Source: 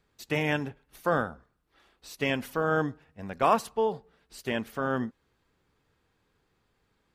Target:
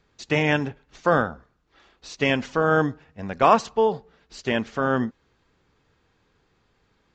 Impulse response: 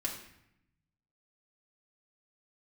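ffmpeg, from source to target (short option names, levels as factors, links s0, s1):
-af "aresample=16000,aresample=44100,volume=2.11"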